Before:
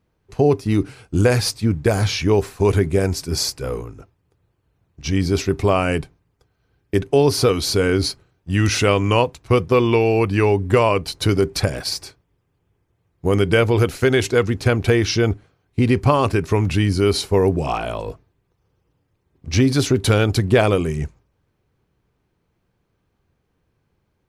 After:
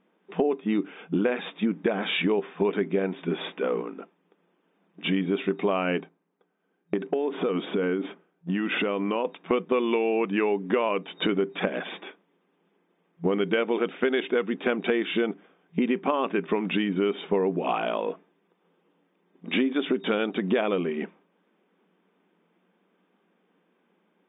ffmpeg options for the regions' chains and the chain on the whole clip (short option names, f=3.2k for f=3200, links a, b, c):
-filter_complex "[0:a]asettb=1/sr,asplit=3[a][b][c];[a]atrim=end=6.004[d];[b]atrim=start=6:end=9.25,asetpts=PTS-STARTPTS,afade=t=in:d=0.004:c=qsin,afade=t=out:st=3.246:d=0.004:c=qsin,agate=range=-7dB:threshold=-46dB:ratio=16:release=100:detection=peak,highshelf=f=2.9k:g=-11.5,acompressor=threshold=-20dB:ratio=6:attack=3.2:release=140:knee=1:detection=peak[e];[c]atrim=start=9.246[f];[d][e]acrossfade=d=0.004:c1=hsin:c2=qsin[g];[g][f]acrossfade=d=0.004:c1=qsin:c2=hsin,afftfilt=real='re*between(b*sr/4096,170,3700)':imag='im*between(b*sr/4096,170,3700)':win_size=4096:overlap=0.75,acompressor=threshold=-28dB:ratio=4,volume=4.5dB"